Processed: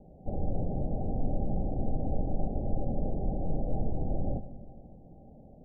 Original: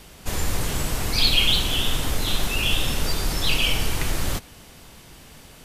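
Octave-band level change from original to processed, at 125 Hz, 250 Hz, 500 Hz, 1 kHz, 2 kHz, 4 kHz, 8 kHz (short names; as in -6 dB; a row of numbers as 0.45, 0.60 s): -4.5 dB, -2.0 dB, -3.5 dB, -8.5 dB, under -40 dB, under -40 dB, under -40 dB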